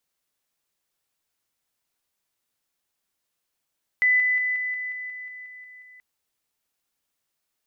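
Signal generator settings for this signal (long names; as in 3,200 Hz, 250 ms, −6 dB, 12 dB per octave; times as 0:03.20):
level staircase 2,000 Hz −16 dBFS, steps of −3 dB, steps 11, 0.18 s 0.00 s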